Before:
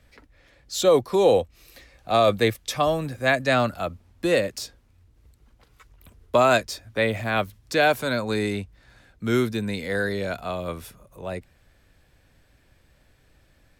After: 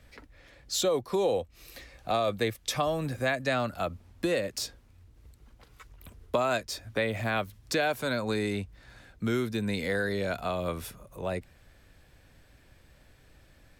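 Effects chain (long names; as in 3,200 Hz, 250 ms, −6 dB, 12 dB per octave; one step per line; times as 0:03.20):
downward compressor 3 to 1, threshold −29 dBFS, peak gain reduction 12 dB
level +1.5 dB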